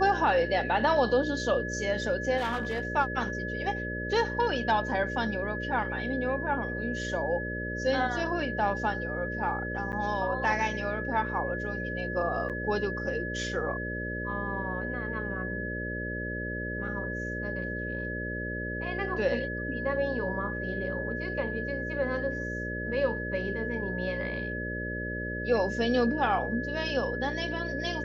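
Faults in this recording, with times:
mains buzz 60 Hz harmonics 10 −36 dBFS
whistle 1,700 Hz −35 dBFS
0:02.37–0:02.83: clipping −26 dBFS
0:09.92–0:09.93: drop-out 9.2 ms
0:12.49–0:12.50: drop-out 7.6 ms

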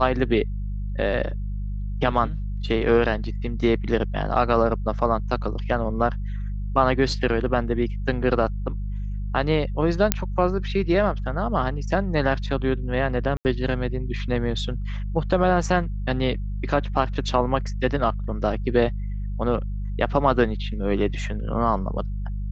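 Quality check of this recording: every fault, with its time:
mains hum 50 Hz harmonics 4 −28 dBFS
0:10.12: click −1 dBFS
0:13.37–0:13.45: drop-out 79 ms

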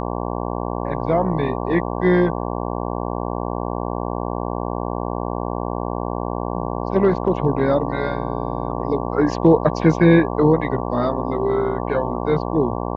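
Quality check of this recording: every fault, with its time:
mains buzz 60 Hz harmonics 19 −25 dBFS

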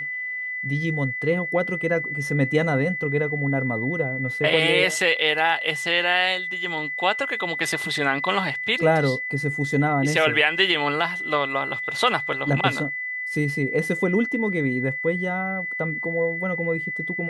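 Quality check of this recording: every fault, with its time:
whistle 2,000 Hz −27 dBFS

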